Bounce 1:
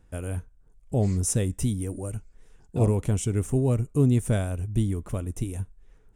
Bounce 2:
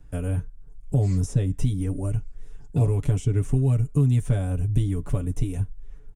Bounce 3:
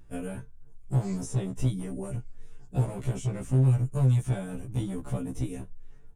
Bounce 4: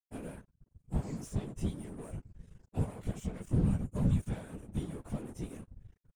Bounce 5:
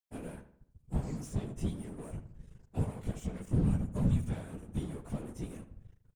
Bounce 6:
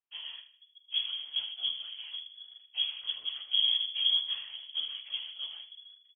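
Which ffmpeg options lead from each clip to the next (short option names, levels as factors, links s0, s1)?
-filter_complex "[0:a]lowshelf=f=150:g=11,aecho=1:1:7:0.82,acrossover=split=200|890|6000[s0][s1][s2][s3];[s0]acompressor=threshold=0.1:ratio=4[s4];[s1]acompressor=threshold=0.0316:ratio=4[s5];[s2]acompressor=threshold=0.00631:ratio=4[s6];[s3]acompressor=threshold=0.00282:ratio=4[s7];[s4][s5][s6][s7]amix=inputs=4:normalize=0"
-filter_complex "[0:a]acrossover=split=1300[s0][s1];[s0]volume=10,asoftclip=hard,volume=0.1[s2];[s2][s1]amix=inputs=2:normalize=0,afftfilt=real='re*1.73*eq(mod(b,3),0)':imag='im*1.73*eq(mod(b,3),0)':win_size=2048:overlap=0.75"
-af "aeval=exprs='sgn(val(0))*max(abs(val(0))-0.00668,0)':c=same,agate=range=0.0224:threshold=0.00316:ratio=3:detection=peak,afftfilt=real='hypot(re,im)*cos(2*PI*random(0))':imag='hypot(re,im)*sin(2*PI*random(1))':win_size=512:overlap=0.75"
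-filter_complex "[0:a]asplit=2[s0][s1];[s1]adelay=77,lowpass=f=2700:p=1,volume=0.251,asplit=2[s2][s3];[s3]adelay=77,lowpass=f=2700:p=1,volume=0.45,asplit=2[s4][s5];[s5]adelay=77,lowpass=f=2700:p=1,volume=0.45,asplit=2[s6][s7];[s7]adelay=77,lowpass=f=2700:p=1,volume=0.45,asplit=2[s8][s9];[s9]adelay=77,lowpass=f=2700:p=1,volume=0.45[s10];[s0][s2][s4][s6][s8][s10]amix=inputs=6:normalize=0"
-filter_complex "[0:a]asplit=2[s0][s1];[s1]adelay=49,volume=0.211[s2];[s0][s2]amix=inputs=2:normalize=0,lowpass=f=2900:t=q:w=0.5098,lowpass=f=2900:t=q:w=0.6013,lowpass=f=2900:t=q:w=0.9,lowpass=f=2900:t=q:w=2.563,afreqshift=-3400"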